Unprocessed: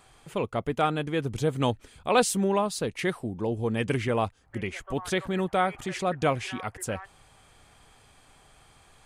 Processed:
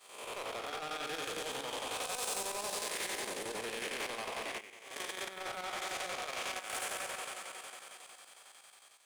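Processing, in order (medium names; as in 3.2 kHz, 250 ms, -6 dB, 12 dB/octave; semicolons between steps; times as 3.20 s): spectral blur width 367 ms; high-pass 640 Hz 12 dB/octave; echo whose repeats swap between lows and highs 196 ms, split 1.3 kHz, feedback 75%, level -7 dB; peak limiter -31 dBFS, peak gain reduction 11 dB; 4.58–6.70 s: level held to a coarse grid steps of 14 dB; waveshaping leveller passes 3; treble shelf 2.4 kHz +10 dB; expander -35 dBFS; square tremolo 11 Hz, depth 60%, duty 70%; swell ahead of each attack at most 76 dB/s; trim -5.5 dB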